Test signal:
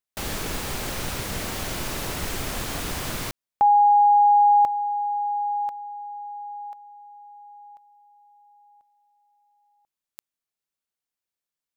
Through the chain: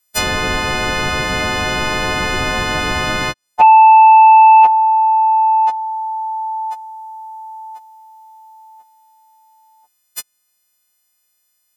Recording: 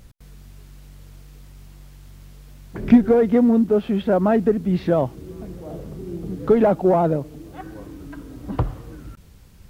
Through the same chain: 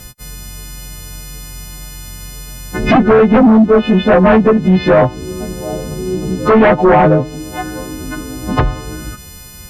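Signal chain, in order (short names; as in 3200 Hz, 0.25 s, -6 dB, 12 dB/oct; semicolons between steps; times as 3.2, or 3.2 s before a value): frequency quantiser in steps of 3 st; sine folder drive 11 dB, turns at -2.5 dBFS; treble ducked by the level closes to 2400 Hz, closed at -5 dBFS; gain -1.5 dB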